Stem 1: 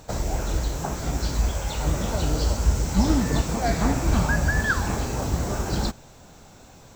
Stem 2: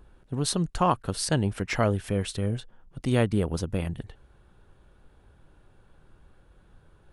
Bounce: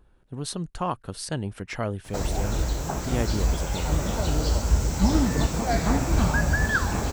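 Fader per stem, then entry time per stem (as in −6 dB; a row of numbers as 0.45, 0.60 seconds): −0.5, −5.0 decibels; 2.05, 0.00 seconds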